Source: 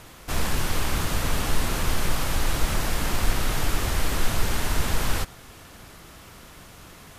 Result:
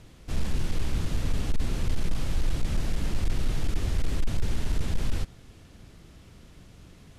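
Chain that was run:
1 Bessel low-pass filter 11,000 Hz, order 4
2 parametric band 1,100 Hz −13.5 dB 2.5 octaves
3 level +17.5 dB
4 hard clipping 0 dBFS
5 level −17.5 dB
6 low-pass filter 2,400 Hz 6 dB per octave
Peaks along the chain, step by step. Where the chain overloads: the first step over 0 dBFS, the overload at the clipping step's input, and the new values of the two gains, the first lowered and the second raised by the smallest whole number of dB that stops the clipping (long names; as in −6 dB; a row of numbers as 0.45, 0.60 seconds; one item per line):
−9.0, −9.0, +8.5, 0.0, −17.5, −17.5 dBFS
step 3, 8.5 dB
step 3 +8.5 dB, step 5 −8.5 dB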